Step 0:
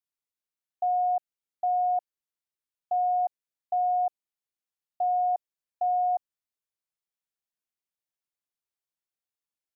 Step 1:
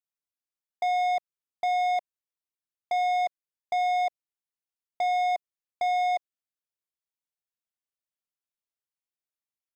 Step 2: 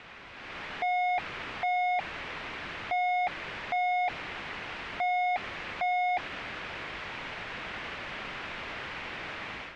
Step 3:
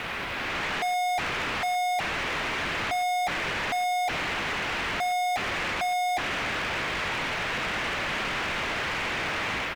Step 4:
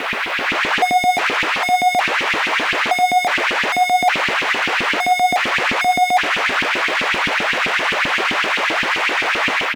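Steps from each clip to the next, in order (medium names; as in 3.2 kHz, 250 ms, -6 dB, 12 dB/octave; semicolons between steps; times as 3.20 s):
dynamic bell 800 Hz, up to -7 dB, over -42 dBFS, Q 4.9; waveshaping leveller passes 3
one-bit comparator; level rider gain up to 10 dB; four-pole ladder low-pass 2.9 kHz, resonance 30%
waveshaping leveller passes 3; peak limiter -31.5 dBFS, peak gain reduction 7.5 dB; delay 122 ms -19.5 dB; trim +6.5 dB
LFO high-pass saw up 7.7 Hz 230–3000 Hz; trim +9 dB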